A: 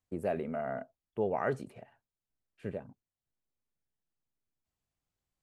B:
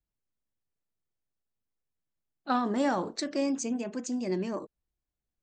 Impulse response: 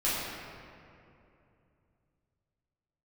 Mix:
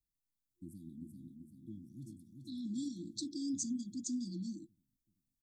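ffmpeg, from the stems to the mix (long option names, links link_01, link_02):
-filter_complex "[0:a]equalizer=frequency=4000:width_type=o:width=0.2:gain=-12.5,adelay=500,volume=-9.5dB,asplit=2[link_01][link_02];[link_02]volume=-5dB[link_03];[1:a]alimiter=level_in=0.5dB:limit=-24dB:level=0:latency=1:release=39,volume=-0.5dB,volume=-5.5dB,asplit=2[link_04][link_05];[link_05]apad=whole_len=261304[link_06];[link_01][link_06]sidechaincompress=threshold=-51dB:ratio=8:attack=16:release=332[link_07];[link_03]aecho=0:1:385|770|1155|1540|1925|2310|2695:1|0.48|0.23|0.111|0.0531|0.0255|0.0122[link_08];[link_07][link_04][link_08]amix=inputs=3:normalize=0,afftfilt=real='re*(1-between(b*sr/4096,350,3300))':imag='im*(1-between(b*sr/4096,350,3300))':win_size=4096:overlap=0.75,crystalizer=i=1:c=0"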